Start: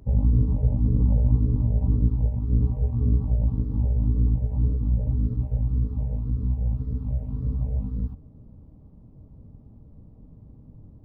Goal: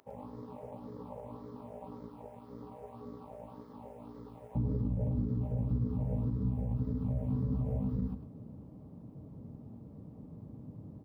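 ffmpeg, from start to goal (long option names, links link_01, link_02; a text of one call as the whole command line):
ffmpeg -i in.wav -af "asetnsamples=nb_out_samples=441:pad=0,asendcmd='4.55 highpass f 140',highpass=830,alimiter=level_in=5dB:limit=-24dB:level=0:latency=1:release=61,volume=-5dB,aecho=1:1:105:0.299,volume=4dB" out.wav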